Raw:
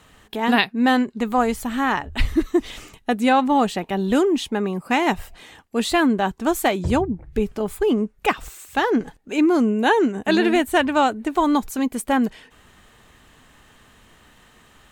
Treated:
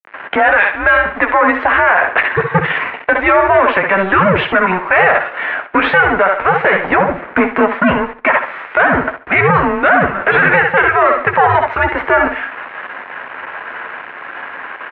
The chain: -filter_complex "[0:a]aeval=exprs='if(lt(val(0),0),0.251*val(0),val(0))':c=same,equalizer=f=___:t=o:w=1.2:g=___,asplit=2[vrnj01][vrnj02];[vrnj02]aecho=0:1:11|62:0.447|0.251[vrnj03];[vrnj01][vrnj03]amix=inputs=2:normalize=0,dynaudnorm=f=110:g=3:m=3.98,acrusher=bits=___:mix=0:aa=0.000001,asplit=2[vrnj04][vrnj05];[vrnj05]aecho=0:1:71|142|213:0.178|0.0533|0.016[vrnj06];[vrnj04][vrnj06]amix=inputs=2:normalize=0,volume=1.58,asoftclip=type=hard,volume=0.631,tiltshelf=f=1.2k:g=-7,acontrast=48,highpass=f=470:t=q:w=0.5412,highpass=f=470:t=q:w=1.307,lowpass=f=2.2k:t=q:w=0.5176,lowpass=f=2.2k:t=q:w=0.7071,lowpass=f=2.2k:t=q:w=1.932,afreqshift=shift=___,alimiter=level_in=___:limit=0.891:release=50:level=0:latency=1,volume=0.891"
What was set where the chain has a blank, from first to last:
440, -5, 6, -190, 4.73